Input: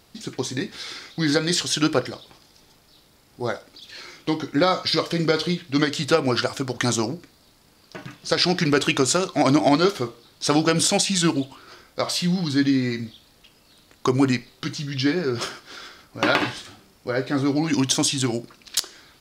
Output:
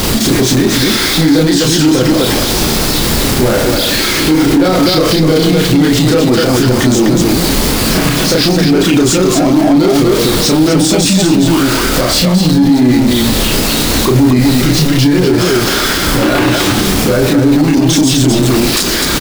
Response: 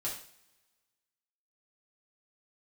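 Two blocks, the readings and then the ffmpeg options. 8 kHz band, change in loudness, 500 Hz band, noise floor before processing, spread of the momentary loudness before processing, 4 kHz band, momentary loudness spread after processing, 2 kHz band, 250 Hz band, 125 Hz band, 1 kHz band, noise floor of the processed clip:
+13.0 dB, +12.5 dB, +12.5 dB, -57 dBFS, 16 LU, +13.0 dB, 2 LU, +12.0 dB, +15.0 dB, +15.5 dB, +10.0 dB, -13 dBFS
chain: -filter_complex "[0:a]aeval=exprs='val(0)+0.5*0.106*sgn(val(0))':c=same,equalizer=f=110:w=0.76:g=-8.5,acrossover=split=360[s0][s1];[s1]acompressor=threshold=0.00158:ratio=1.5[s2];[s0][s2]amix=inputs=2:normalize=0,asoftclip=type=tanh:threshold=0.126,asplit=2[s3][s4];[s4]aecho=0:1:32.07|253.6:1|0.794[s5];[s3][s5]amix=inputs=2:normalize=0,alimiter=level_in=9.44:limit=0.891:release=50:level=0:latency=1,volume=0.891"

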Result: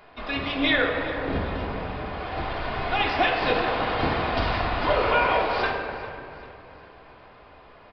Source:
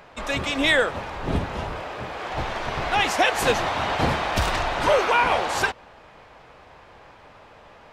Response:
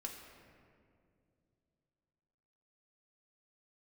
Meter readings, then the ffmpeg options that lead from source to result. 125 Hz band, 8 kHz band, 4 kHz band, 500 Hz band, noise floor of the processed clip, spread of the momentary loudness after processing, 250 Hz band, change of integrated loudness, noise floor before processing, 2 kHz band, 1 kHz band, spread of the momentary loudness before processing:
-1.5 dB, under -25 dB, -2.5 dB, -1.0 dB, -50 dBFS, 12 LU, +0.5 dB, -2.0 dB, -49 dBFS, -2.0 dB, -1.5 dB, 12 LU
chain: -filter_complex "[0:a]aecho=1:1:398|796|1194|1592:0.141|0.0622|0.0273|0.012[s0];[1:a]atrim=start_sample=2205,asetrate=41013,aresample=44100[s1];[s0][s1]afir=irnorm=-1:irlink=0,aresample=11025,aresample=44100"

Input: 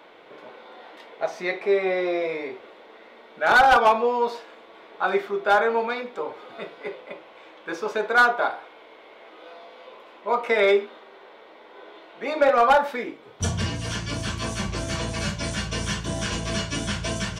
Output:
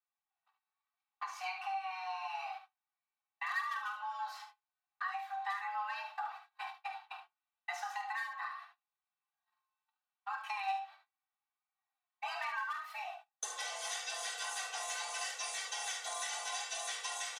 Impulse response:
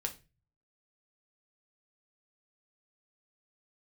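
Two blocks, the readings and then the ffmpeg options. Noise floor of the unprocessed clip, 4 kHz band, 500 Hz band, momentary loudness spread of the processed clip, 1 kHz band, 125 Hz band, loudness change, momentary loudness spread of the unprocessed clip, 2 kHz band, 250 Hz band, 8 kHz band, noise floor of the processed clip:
-49 dBFS, -10.5 dB, -30.5 dB, 9 LU, -15.5 dB, under -40 dB, -16.5 dB, 18 LU, -15.5 dB, under -40 dB, -5.0 dB, under -85 dBFS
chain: -filter_complex "[0:a]highpass=330,agate=range=0.00631:threshold=0.0126:ratio=16:detection=peak,highshelf=f=7400:g=9.5,aecho=1:1:2.6:0.97,acompressor=threshold=0.0398:ratio=12,aecho=1:1:48|73:0.299|0.355,flanger=delay=1:depth=3.4:regen=76:speed=0.77:shape=sinusoidal,afreqshift=380,asplit=2[s0][s1];[1:a]atrim=start_sample=2205,atrim=end_sample=4410[s2];[s1][s2]afir=irnorm=-1:irlink=0,volume=0.211[s3];[s0][s3]amix=inputs=2:normalize=0,volume=0.501"

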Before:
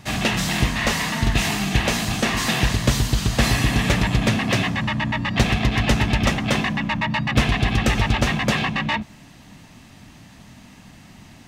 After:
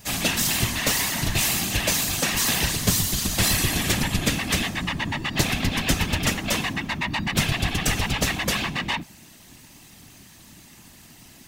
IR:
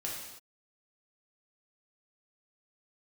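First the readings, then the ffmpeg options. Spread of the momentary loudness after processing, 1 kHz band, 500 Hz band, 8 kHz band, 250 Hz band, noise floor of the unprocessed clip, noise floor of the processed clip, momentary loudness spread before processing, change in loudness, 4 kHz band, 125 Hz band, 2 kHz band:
6 LU, -5.0 dB, -5.0 dB, +5.5 dB, -5.5 dB, -47 dBFS, -49 dBFS, 3 LU, -2.0 dB, 0.0 dB, -6.0 dB, -3.0 dB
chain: -af "aemphasis=mode=production:type=75fm,afftfilt=real='hypot(re,im)*cos(2*PI*random(0))':imag='hypot(re,im)*sin(2*PI*random(1))':win_size=512:overlap=0.75,volume=1.12"

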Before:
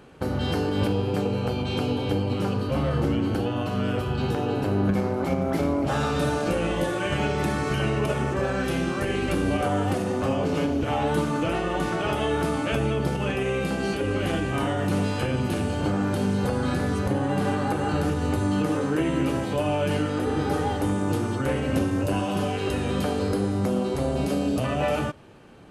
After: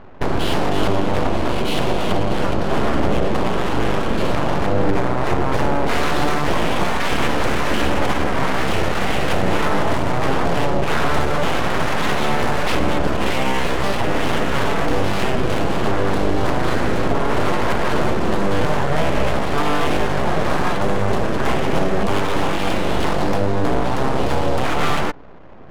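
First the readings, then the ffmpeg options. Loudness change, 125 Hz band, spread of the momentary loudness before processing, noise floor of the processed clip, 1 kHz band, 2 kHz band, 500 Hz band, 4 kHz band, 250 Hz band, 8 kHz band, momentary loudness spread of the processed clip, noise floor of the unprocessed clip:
+5.0 dB, +2.0 dB, 2 LU, -18 dBFS, +9.0 dB, +8.5 dB, +5.0 dB, +8.5 dB, +2.0 dB, +6.5 dB, 1 LU, -28 dBFS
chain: -filter_complex "[0:a]asplit=2[s0][s1];[s1]alimiter=limit=0.0841:level=0:latency=1,volume=1.26[s2];[s0][s2]amix=inputs=2:normalize=0,aeval=exprs='abs(val(0))':c=same,adynamicsmooth=sensitivity=8:basefreq=970,volume=1.68"

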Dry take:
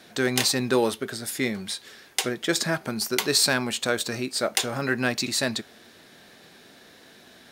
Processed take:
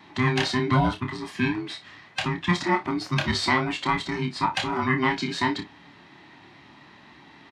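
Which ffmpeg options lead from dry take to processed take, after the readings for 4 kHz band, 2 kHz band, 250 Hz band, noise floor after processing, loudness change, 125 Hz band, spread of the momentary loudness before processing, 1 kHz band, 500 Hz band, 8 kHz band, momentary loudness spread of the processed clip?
-4.5 dB, +1.0 dB, +2.0 dB, -51 dBFS, -0.5 dB, +7.0 dB, 9 LU, +7.5 dB, -4.0 dB, -14.5 dB, 10 LU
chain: -af "afftfilt=real='real(if(between(b,1,1008),(2*floor((b-1)/24)+1)*24-b,b),0)':imag='imag(if(between(b,1,1008),(2*floor((b-1)/24)+1)*24-b,b),0)*if(between(b,1,1008),-1,1)':win_size=2048:overlap=0.75,highpass=110,lowpass=2800,aecho=1:1:28|57:0.473|0.178,volume=1.26"

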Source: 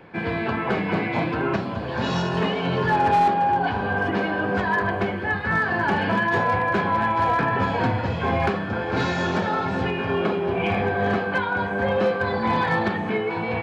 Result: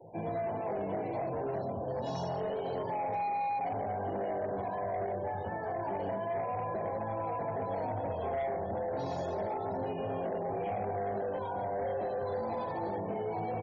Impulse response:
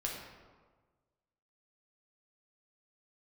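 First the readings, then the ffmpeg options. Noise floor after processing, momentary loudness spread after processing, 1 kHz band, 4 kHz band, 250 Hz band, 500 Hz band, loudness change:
-37 dBFS, 2 LU, -12.0 dB, under -20 dB, -15.5 dB, -8.0 dB, -12.0 dB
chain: -filter_complex "[0:a]asplit=2[s0][s1];[1:a]atrim=start_sample=2205[s2];[s1][s2]afir=irnorm=-1:irlink=0,volume=0.299[s3];[s0][s3]amix=inputs=2:normalize=0,acrossover=split=140[s4][s5];[s4]acompressor=threshold=0.00794:ratio=2.5[s6];[s6][s5]amix=inputs=2:normalize=0,flanger=delay=18.5:depth=3.5:speed=0.29,aecho=1:1:93:0.237,alimiter=limit=0.133:level=0:latency=1:release=56,firequalizer=gain_entry='entry(130,0);entry(200,-8);entry(640,8);entry(1400,-18);entry(5700,-1)':delay=0.05:min_phase=1,acrusher=bits=6:mode=log:mix=0:aa=0.000001,equalizer=f=1300:w=0.61:g=-2.5,bandreject=f=60.4:t=h:w=4,bandreject=f=120.8:t=h:w=4,bandreject=f=181.2:t=h:w=4,bandreject=f=241.6:t=h:w=4,bandreject=f=302:t=h:w=4,bandreject=f=362.4:t=h:w=4,bandreject=f=422.8:t=h:w=4,bandreject=f=483.2:t=h:w=4,bandreject=f=543.6:t=h:w=4,bandreject=f=604:t=h:w=4,bandreject=f=664.4:t=h:w=4,bandreject=f=724.8:t=h:w=4,bandreject=f=785.2:t=h:w=4,asoftclip=type=tanh:threshold=0.0708,acompressor=threshold=0.0282:ratio=2.5,afftfilt=real='re*gte(hypot(re,im),0.00447)':imag='im*gte(hypot(re,im),0.00447)':win_size=1024:overlap=0.75,volume=0.794"

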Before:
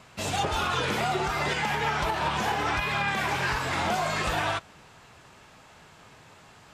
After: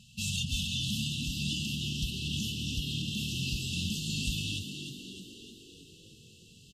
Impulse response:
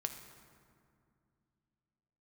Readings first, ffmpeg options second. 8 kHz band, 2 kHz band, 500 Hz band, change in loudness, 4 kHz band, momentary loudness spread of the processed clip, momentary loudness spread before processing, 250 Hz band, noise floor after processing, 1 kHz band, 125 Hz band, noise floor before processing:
+1.0 dB, -13.0 dB, -23.5 dB, -6.0 dB, +1.0 dB, 17 LU, 2 LU, -0.5 dB, -56 dBFS, under -40 dB, +0.5 dB, -53 dBFS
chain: -filter_complex "[0:a]afftfilt=real='re*(1-between(b*sr/4096,240,2600))':imag='im*(1-between(b*sr/4096,240,2600))':win_size=4096:overlap=0.75,asplit=8[s0][s1][s2][s3][s4][s5][s6][s7];[s1]adelay=306,afreqshift=44,volume=0.398[s8];[s2]adelay=612,afreqshift=88,volume=0.234[s9];[s3]adelay=918,afreqshift=132,volume=0.138[s10];[s4]adelay=1224,afreqshift=176,volume=0.0822[s11];[s5]adelay=1530,afreqshift=220,volume=0.0484[s12];[s6]adelay=1836,afreqshift=264,volume=0.0285[s13];[s7]adelay=2142,afreqshift=308,volume=0.0168[s14];[s0][s8][s9][s10][s11][s12][s13][s14]amix=inputs=8:normalize=0"

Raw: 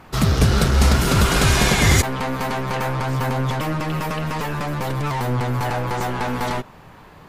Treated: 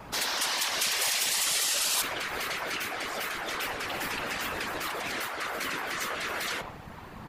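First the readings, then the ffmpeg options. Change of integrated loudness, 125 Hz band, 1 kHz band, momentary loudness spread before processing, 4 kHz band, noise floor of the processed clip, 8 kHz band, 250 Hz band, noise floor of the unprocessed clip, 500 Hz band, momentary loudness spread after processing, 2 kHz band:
-8.5 dB, -31.0 dB, -10.5 dB, 9 LU, -3.0 dB, -45 dBFS, -2.0 dB, -20.5 dB, -45 dBFS, -13.5 dB, 8 LU, -5.5 dB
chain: -filter_complex "[0:a]asplit=2[s0][s1];[s1]adelay=120,highpass=300,lowpass=3400,asoftclip=type=hard:threshold=0.178,volume=0.141[s2];[s0][s2]amix=inputs=2:normalize=0,afftfilt=real='re*lt(hypot(re,im),0.112)':imag='im*lt(hypot(re,im),0.112)':win_size=1024:overlap=0.75,afftfilt=real='hypot(re,im)*cos(2*PI*random(0))':imag='hypot(re,im)*sin(2*PI*random(1))':win_size=512:overlap=0.75,volume=2"

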